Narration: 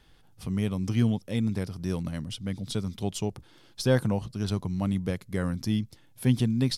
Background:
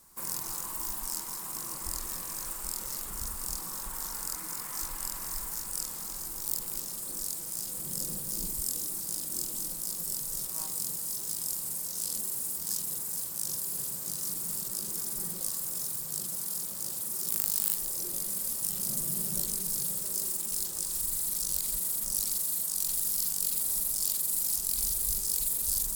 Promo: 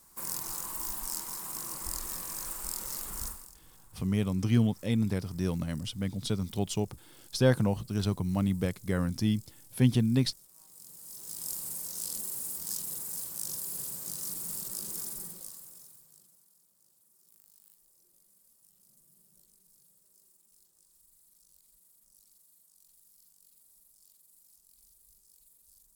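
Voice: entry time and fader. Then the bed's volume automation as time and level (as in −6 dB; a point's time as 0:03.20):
3.55 s, −0.5 dB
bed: 0:03.27 −1 dB
0:03.56 −22.5 dB
0:10.61 −22.5 dB
0:11.50 −3 dB
0:15.04 −3 dB
0:16.54 −32 dB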